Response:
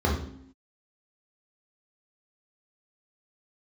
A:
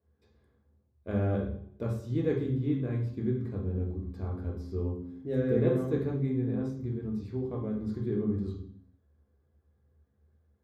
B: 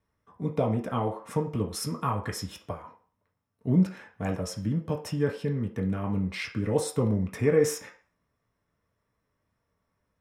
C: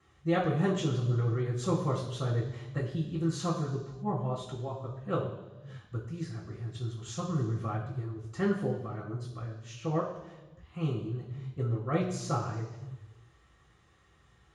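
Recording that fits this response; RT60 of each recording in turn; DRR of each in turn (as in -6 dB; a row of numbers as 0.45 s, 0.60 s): A; 0.70 s, 0.40 s, no single decay rate; -2.5 dB, -0.5 dB, -6.5 dB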